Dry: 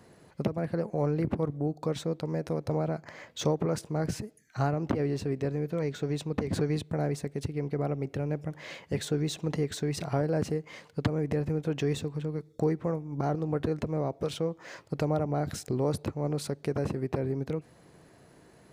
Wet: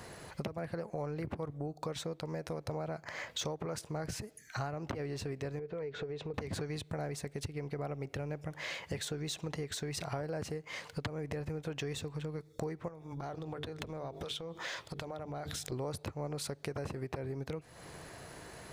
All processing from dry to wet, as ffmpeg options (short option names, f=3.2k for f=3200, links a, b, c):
-filter_complex "[0:a]asettb=1/sr,asplit=3[a][b][c];[a]atrim=end=5.594[d];[b]atrim=start=5.59:end=6.34,asetpts=PTS-STARTPTS,afade=t=in:d=0.004:c=qsin,afade=t=out:st=0.746:d=0.004:c=qsin,lowpass=3k,equalizer=f=440:t=o:w=0.4:g=10.5,acompressor=threshold=-38dB:ratio=2.5:attack=3.2:release=140:knee=1:detection=peak[e];[c]atrim=start=6.336[f];[d][e]acrossfade=d=0.004:c1=hsin:c2=qsin[g];[g][f]acrossfade=d=0.004:c1=qsin:c2=hsin,asettb=1/sr,asplit=3[h][i][j];[h]atrim=end=12.884[k];[i]atrim=start=12.88:end=15.72,asetpts=PTS-STARTPTS,afade=t=in:d=0.004:c=qsin,afade=t=out:st=2.836:d=0.004:c=qsin,equalizer=f=3.5k:w=4.6:g=11,bandreject=f=50:t=h:w=6,bandreject=f=100:t=h:w=6,bandreject=f=150:t=h:w=6,bandreject=f=200:t=h:w=6,bandreject=f=250:t=h:w=6,bandreject=f=300:t=h:w=6,bandreject=f=350:t=h:w=6,bandreject=f=400:t=h:w=6,bandreject=f=450:t=h:w=6,acompressor=threshold=-39dB:ratio=10:attack=3.2:release=140:knee=1:detection=peak[l];[j]atrim=start=15.716[m];[k][l]acrossfade=d=0.004:c1=hsin:c2=qsin[n];[n][m]acrossfade=d=0.004:c1=qsin:c2=hsin,equalizer=f=240:w=0.58:g=-9.5,acompressor=threshold=-50dB:ratio=4,volume=11.5dB"